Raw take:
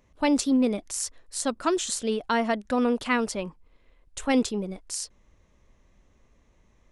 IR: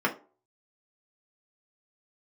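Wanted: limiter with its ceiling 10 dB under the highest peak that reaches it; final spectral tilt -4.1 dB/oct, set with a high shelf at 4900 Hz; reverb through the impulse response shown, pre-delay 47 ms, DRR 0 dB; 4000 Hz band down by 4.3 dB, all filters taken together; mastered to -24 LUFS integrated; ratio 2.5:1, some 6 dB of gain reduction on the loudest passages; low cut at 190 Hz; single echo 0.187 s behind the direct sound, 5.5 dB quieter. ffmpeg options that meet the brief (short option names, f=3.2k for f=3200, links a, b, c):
-filter_complex "[0:a]highpass=190,equalizer=f=4k:t=o:g=-9,highshelf=f=4.9k:g=5.5,acompressor=threshold=-28dB:ratio=2.5,alimiter=limit=-23dB:level=0:latency=1,aecho=1:1:187:0.531,asplit=2[a][b];[1:a]atrim=start_sample=2205,adelay=47[c];[b][c]afir=irnorm=-1:irlink=0,volume=-12dB[d];[a][d]amix=inputs=2:normalize=0,volume=5dB"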